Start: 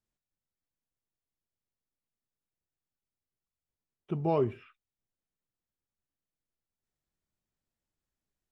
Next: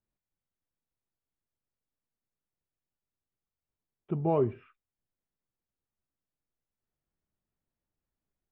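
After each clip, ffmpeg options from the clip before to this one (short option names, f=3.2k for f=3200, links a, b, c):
-af "lowpass=3.3k,highshelf=f=2.4k:g=-11.5,volume=1.5dB"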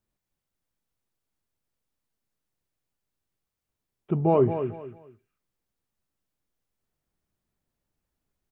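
-af "aecho=1:1:224|448|672:0.355|0.0958|0.0259,volume=6dB"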